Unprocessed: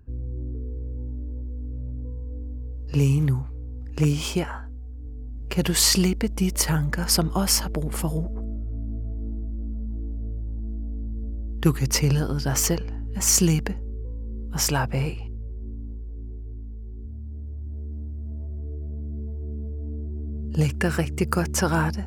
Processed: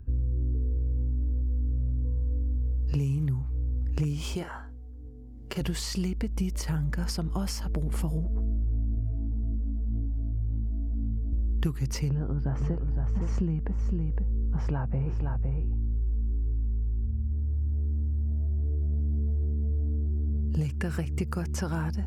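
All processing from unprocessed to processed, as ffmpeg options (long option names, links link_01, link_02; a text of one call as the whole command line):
ffmpeg -i in.wav -filter_complex "[0:a]asettb=1/sr,asplit=3[link_01][link_02][link_03];[link_01]atrim=end=4.354[link_04];[link_02]atrim=start=4.35:end=5.61,asetpts=PTS-STARTPTS,afade=type=in:duration=0.004:curve=qsin,afade=type=out:start_time=1.256:duration=0.004:curve=qsin,highpass=frequency=360:poles=1,bandreject=frequency=2500:width=7.8,asplit=2[link_05][link_06];[link_06]adelay=46,volume=-11dB[link_07];[link_05][link_07]amix=inputs=2:normalize=0,atrim=end_sample=55566[link_08];[link_03]atrim=start=5.606[link_09];[link_04][link_08]acrossfade=duration=0.004:curve1=hsin:curve2=qsin[link_10];[link_10][link_09]acrossfade=duration=0.004:curve1=qsin:curve2=hsin,asettb=1/sr,asplit=3[link_11][link_12][link_13];[link_11]atrim=end=8.954[link_14];[link_12]atrim=start=8.95:end=11.33,asetpts=PTS-STARTPTS,afade=type=in:duration=0.004:curve=qsin,afade=type=out:start_time=2.376:duration=0.004:curve=qsin,asplit=2[link_15][link_16];[link_16]adelay=44,volume=-4dB[link_17];[link_15][link_17]amix=inputs=2:normalize=0,atrim=end_sample=104958,flanger=delay=18:depth=3.5:speed=1.9[link_18];[link_13]atrim=start=11.326[link_19];[link_14][link_18]acrossfade=duration=0.004:curve1=hsin:curve2=qsin[link_20];[link_20][link_19]acrossfade=duration=0.004:curve1=qsin:curve2=hsin,asettb=1/sr,asplit=3[link_21][link_22][link_23];[link_21]atrim=end=12.094[link_24];[link_22]atrim=start=12.09:end=17.33,asetpts=PTS-STARTPTS,afade=type=in:duration=0.004:curve=qsin,afade=type=out:start_time=5.236:duration=0.004:curve=qsin,lowpass=1300,aecho=1:1:512:0.376,atrim=end_sample=231084[link_25];[link_23]atrim=start=17.326[link_26];[link_24][link_25]acrossfade=duration=0.004:curve1=hsin:curve2=qsin[link_27];[link_27][link_26]acrossfade=duration=0.004:curve1=qsin:curve2=hsin,acompressor=threshold=-32dB:ratio=4,lowshelf=frequency=200:gain=10.5,acrossover=split=7000[link_28][link_29];[link_29]acompressor=threshold=-42dB:ratio=4:attack=1:release=60[link_30];[link_28][link_30]amix=inputs=2:normalize=0,volume=-1.5dB" out.wav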